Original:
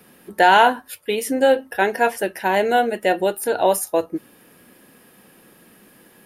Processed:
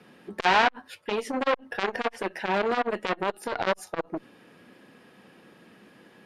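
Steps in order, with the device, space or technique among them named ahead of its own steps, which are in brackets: valve radio (BPF 82–4700 Hz; tube stage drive 10 dB, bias 0.45; core saturation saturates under 1800 Hz)

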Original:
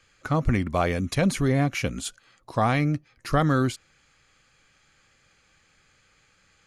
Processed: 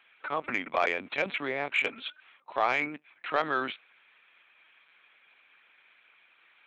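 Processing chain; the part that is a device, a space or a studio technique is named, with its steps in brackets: talking toy (LPC vocoder at 8 kHz pitch kept; HPF 570 Hz 12 dB/oct; bell 2400 Hz +6.5 dB 0.47 oct; soft clip -13.5 dBFS, distortion -19 dB)

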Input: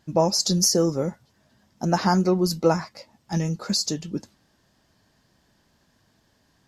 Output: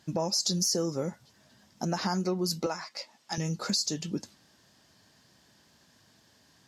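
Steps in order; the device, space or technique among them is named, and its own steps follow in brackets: broadcast voice chain (HPF 85 Hz; de-esser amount 30%; compressor 3:1, threshold -29 dBFS, peak gain reduction 11.5 dB; bell 5900 Hz +6 dB 2.9 oct; limiter -17.5 dBFS, peak gain reduction 6 dB); 2.66–3.38 weighting filter A

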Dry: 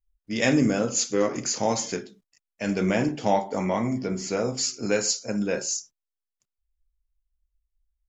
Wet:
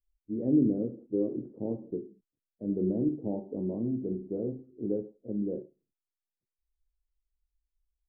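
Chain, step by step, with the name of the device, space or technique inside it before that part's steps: under water (LPF 450 Hz 24 dB/oct; bell 340 Hz +7.5 dB 0.58 oct); gain -6.5 dB

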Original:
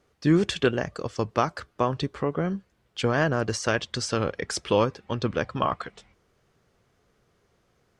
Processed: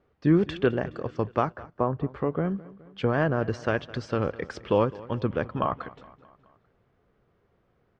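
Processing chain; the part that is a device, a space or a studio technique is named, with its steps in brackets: 1.52–2.09 LPF 1400 Hz 12 dB/oct; phone in a pocket (LPF 3400 Hz 12 dB/oct; high shelf 2100 Hz -9 dB); feedback echo 0.21 s, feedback 56%, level -20 dB

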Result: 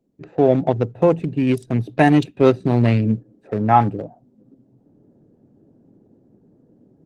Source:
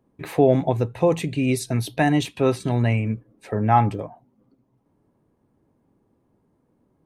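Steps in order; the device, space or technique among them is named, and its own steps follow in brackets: Wiener smoothing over 41 samples; 2.27–3.6 dynamic EQ 4300 Hz, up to +5 dB, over -59 dBFS, Q 4; video call (HPF 130 Hz 12 dB/oct; AGC gain up to 15.5 dB; gain -1 dB; Opus 16 kbps 48000 Hz)

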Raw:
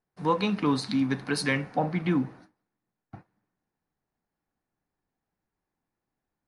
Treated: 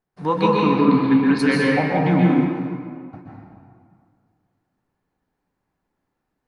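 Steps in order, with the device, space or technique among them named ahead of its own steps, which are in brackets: 0.55–1.38 LPF 2200 Hz -> 4600 Hz 24 dB/oct; swimming-pool hall (reverb RT60 2.1 s, pre-delay 0.119 s, DRR -4.5 dB; high shelf 4500 Hz -6 dB); gain +3.5 dB

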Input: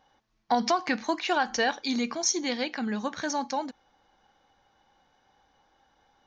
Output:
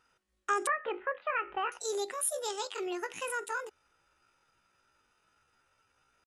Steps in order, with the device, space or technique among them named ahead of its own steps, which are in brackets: chipmunk voice (pitch shift +9 st); 0.67–1.72 steep low-pass 2400 Hz 36 dB/oct; gain -5.5 dB

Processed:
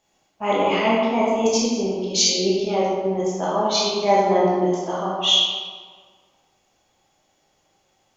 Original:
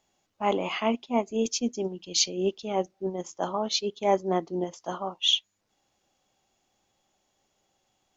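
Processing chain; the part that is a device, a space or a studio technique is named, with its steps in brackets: stairwell (reverb RT60 1.6 s, pre-delay 14 ms, DRR -6.5 dB); gain +1.5 dB

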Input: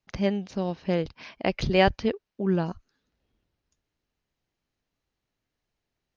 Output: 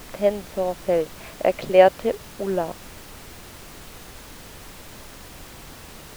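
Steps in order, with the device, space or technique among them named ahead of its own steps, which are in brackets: horn gramophone (BPF 260–3100 Hz; bell 600 Hz +11 dB; wow and flutter; pink noise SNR 16 dB)

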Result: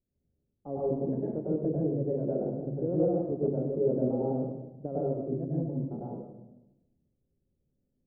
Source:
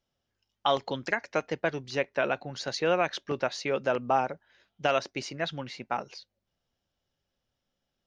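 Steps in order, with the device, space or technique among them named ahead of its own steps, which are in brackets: next room (LPF 410 Hz 24 dB/oct; reverb RT60 1.0 s, pre-delay 95 ms, DRR -6 dB)

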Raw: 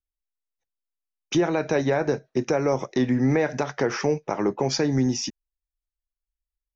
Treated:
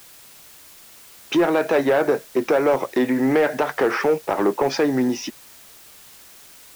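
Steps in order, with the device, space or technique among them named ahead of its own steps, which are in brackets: tape answering machine (BPF 320–2800 Hz; soft clip -19.5 dBFS, distortion -15 dB; wow and flutter; white noise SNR 24 dB); gain +8.5 dB

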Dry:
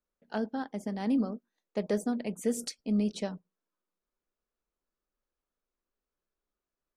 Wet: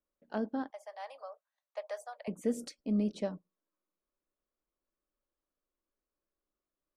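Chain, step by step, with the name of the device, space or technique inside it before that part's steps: inside a helmet (high shelf 3100 Hz -8 dB; small resonant body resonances 310/570/1100 Hz, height 7 dB); 0.7–2.28 steep high-pass 610 Hz 48 dB/oct; gain -3 dB

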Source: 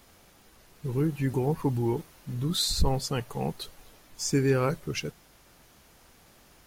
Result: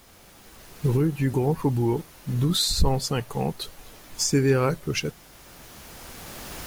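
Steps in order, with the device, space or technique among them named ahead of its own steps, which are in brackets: cheap recorder with automatic gain (white noise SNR 36 dB; recorder AGC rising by 9 dB/s); gain +3.5 dB

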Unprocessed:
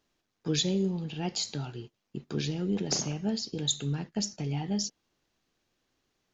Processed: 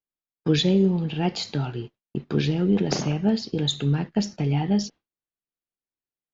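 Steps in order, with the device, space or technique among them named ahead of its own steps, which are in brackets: hearing-loss simulation (LPF 3200 Hz 12 dB/oct; expander -45 dBFS); gain +9 dB

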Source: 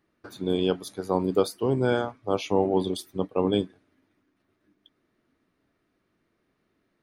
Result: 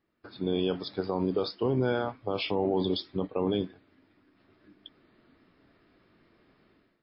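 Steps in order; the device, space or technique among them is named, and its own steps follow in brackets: low-bitrate web radio (AGC gain up to 15 dB; limiter -12.5 dBFS, peak gain reduction 11.5 dB; gain -5 dB; MP3 24 kbps 12000 Hz)

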